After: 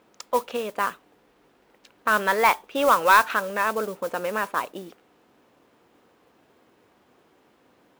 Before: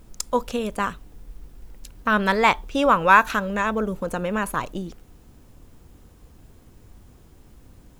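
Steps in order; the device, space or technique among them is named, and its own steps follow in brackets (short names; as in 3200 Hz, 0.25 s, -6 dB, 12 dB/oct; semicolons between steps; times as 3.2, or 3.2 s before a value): carbon microphone (BPF 400–3200 Hz; soft clip -8 dBFS, distortion -15 dB; modulation noise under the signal 17 dB); gain +1 dB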